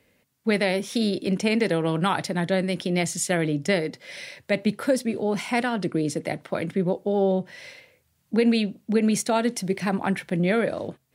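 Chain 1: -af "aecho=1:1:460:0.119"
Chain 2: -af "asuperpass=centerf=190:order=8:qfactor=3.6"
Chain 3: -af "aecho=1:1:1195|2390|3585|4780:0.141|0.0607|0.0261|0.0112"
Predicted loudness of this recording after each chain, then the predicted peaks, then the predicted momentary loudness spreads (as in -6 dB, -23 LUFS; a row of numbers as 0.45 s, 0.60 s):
-25.0 LUFS, -31.0 LUFS, -25.0 LUFS; -9.0 dBFS, -16.5 dBFS, -9.0 dBFS; 8 LU, 12 LU, 9 LU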